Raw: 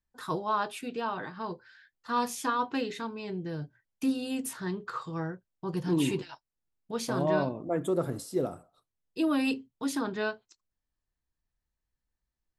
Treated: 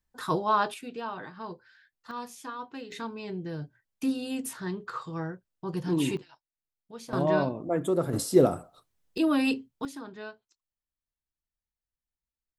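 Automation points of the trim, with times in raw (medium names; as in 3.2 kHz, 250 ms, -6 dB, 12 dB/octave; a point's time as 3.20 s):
+4.5 dB
from 0.74 s -3 dB
from 2.11 s -9.5 dB
from 2.92 s 0 dB
from 6.17 s -10 dB
from 7.13 s +2 dB
from 8.13 s +10 dB
from 9.18 s +2.5 dB
from 9.85 s -10 dB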